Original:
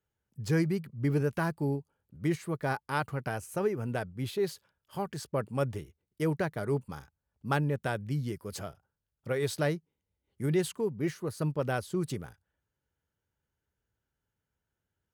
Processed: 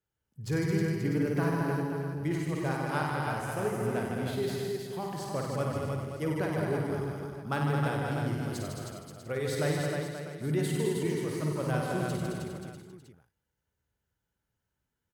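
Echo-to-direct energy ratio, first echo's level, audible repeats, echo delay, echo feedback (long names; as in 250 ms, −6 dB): 3.5 dB, −5.5 dB, 17, 53 ms, repeats not evenly spaced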